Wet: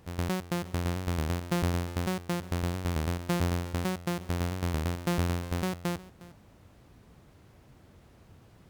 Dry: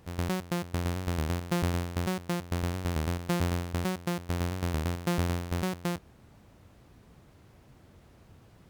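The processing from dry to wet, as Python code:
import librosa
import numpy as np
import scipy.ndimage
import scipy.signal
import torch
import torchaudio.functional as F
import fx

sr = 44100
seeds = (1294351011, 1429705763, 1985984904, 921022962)

y = x + 10.0 ** (-19.5 / 20.0) * np.pad(x, (int(359 * sr / 1000.0), 0))[:len(x)]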